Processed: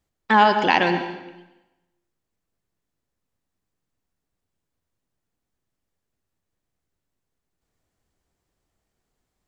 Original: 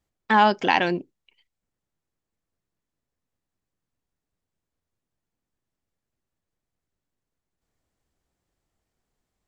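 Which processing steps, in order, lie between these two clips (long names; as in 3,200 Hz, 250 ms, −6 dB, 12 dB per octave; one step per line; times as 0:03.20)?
dense smooth reverb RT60 1 s, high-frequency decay 0.9×, pre-delay 90 ms, DRR 7.5 dB
level +2 dB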